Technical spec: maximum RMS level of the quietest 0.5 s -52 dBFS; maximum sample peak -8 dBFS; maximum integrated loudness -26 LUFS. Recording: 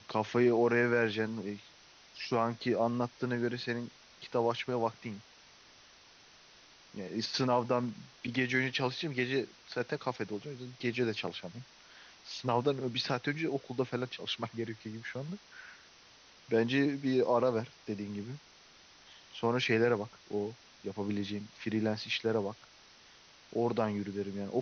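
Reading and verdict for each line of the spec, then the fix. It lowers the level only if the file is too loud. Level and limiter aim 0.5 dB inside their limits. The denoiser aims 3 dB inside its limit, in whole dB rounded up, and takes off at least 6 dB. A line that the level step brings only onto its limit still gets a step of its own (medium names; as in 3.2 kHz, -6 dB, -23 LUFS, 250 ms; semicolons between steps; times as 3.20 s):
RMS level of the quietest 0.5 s -59 dBFS: pass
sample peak -16.0 dBFS: pass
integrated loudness -33.5 LUFS: pass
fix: none needed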